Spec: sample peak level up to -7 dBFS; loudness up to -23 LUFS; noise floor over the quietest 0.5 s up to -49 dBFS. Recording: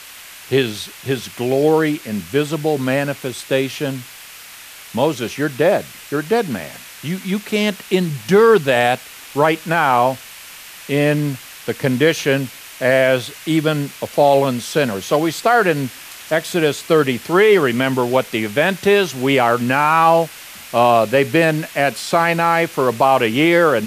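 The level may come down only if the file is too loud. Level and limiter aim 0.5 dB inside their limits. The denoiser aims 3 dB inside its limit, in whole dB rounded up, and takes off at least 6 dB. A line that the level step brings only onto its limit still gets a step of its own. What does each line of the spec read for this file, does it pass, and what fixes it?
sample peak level -2.5 dBFS: fail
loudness -17.0 LUFS: fail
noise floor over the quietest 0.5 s -38 dBFS: fail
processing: noise reduction 8 dB, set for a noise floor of -38 dBFS; trim -6.5 dB

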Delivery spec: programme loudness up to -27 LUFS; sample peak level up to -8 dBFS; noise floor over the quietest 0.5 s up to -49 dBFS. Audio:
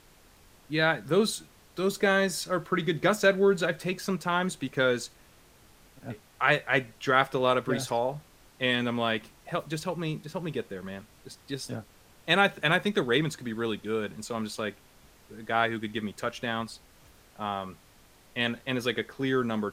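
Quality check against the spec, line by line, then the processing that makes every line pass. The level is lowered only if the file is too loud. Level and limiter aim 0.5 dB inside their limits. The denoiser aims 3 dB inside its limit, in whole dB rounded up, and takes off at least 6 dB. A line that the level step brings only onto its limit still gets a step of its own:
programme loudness -28.5 LUFS: pass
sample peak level -7.0 dBFS: fail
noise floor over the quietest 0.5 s -57 dBFS: pass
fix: peak limiter -8.5 dBFS

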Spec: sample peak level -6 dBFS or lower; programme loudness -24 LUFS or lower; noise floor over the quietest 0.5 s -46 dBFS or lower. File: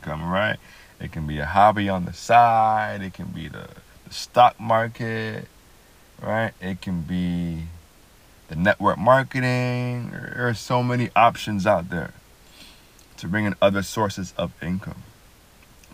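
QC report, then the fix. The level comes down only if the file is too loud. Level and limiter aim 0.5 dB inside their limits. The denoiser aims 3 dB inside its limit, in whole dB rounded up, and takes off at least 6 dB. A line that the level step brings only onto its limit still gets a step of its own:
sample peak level -2.5 dBFS: fail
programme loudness -22.0 LUFS: fail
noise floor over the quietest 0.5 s -52 dBFS: pass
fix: trim -2.5 dB; peak limiter -6.5 dBFS

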